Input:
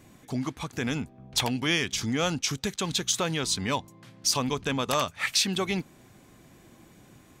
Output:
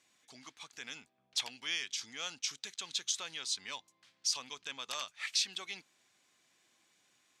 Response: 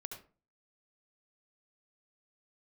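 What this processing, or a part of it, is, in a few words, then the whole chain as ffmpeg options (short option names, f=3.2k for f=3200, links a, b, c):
piezo pickup straight into a mixer: -af "lowpass=5.1k,aderivative,highshelf=f=10k:g=-4"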